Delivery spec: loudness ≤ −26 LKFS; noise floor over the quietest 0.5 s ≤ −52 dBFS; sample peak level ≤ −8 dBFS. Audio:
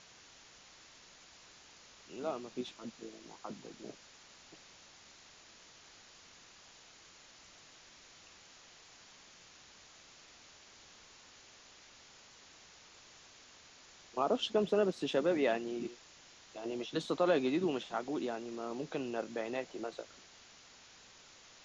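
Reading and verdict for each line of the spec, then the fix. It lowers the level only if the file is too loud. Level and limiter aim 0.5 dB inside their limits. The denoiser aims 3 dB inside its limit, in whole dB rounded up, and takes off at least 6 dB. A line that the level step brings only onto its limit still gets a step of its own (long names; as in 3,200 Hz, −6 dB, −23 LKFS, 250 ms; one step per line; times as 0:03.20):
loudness −36.0 LKFS: in spec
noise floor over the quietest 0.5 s −59 dBFS: in spec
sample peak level −18.0 dBFS: in spec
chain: no processing needed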